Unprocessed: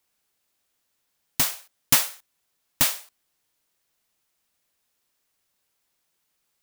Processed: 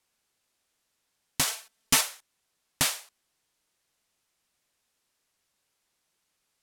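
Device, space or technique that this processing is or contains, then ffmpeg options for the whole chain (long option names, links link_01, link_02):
clipper into limiter: -filter_complex "[0:a]lowpass=11000,asettb=1/sr,asplit=3[link_01][link_02][link_03];[link_01]atrim=end=1.474[link_04];[link_02]atrim=start=1.47:end=2.01,asetpts=PTS-STARTPTS,afade=type=in:duration=0.004:curve=qsin,afade=type=out:start_time=0.536:duration=0.004:curve=qsin,aecho=1:1:4.5:0.97,atrim=end_sample=23814[link_05];[link_03]atrim=start=2.006[link_06];[link_04][link_05]acrossfade=duration=0.004:curve1=hsin:curve2=qsin[link_07];[link_07][link_06]acrossfade=duration=0.004:curve1=qsin:curve2=hsin,asoftclip=type=hard:threshold=-6.5dB,alimiter=limit=-10.5dB:level=0:latency=1:release=53"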